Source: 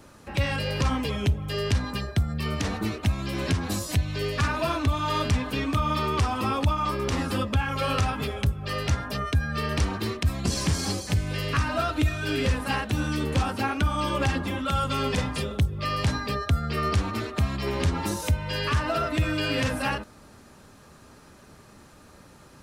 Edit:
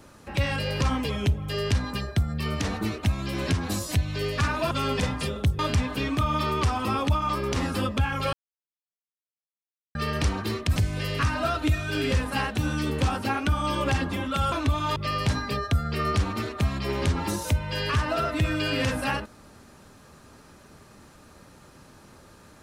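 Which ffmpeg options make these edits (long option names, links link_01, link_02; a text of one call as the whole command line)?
ffmpeg -i in.wav -filter_complex "[0:a]asplit=8[link_01][link_02][link_03][link_04][link_05][link_06][link_07][link_08];[link_01]atrim=end=4.712[link_09];[link_02]atrim=start=14.858:end=15.742[link_10];[link_03]atrim=start=5.148:end=7.89,asetpts=PTS-STARTPTS,afade=type=out:start_time=2.738:duration=0.004:curve=hsin[link_11];[link_04]atrim=start=7.89:end=9.51,asetpts=PTS-STARTPTS,volume=0[link_12];[link_05]atrim=start=9.51:end=10.322,asetpts=PTS-STARTPTS,afade=type=in:duration=0.004:curve=hsin[link_13];[link_06]atrim=start=11.098:end=14.862[link_14];[link_07]atrim=start=4.708:end=5.152[link_15];[link_08]atrim=start=15.738[link_16];[link_09][link_10]acrossfade=duration=0.004:curve1=hsin:curve2=hsin[link_17];[link_11][link_12][link_13]concat=n=3:v=0:a=1[link_18];[link_17][link_18]acrossfade=duration=0.004:curve1=hsin:curve2=hsin[link_19];[link_19][link_14]acrossfade=duration=0.004:curve1=hsin:curve2=hsin[link_20];[link_20][link_15]acrossfade=duration=0.004:curve1=hsin:curve2=hsin[link_21];[link_21][link_16]acrossfade=duration=0.004:curve1=hsin:curve2=hsin" out.wav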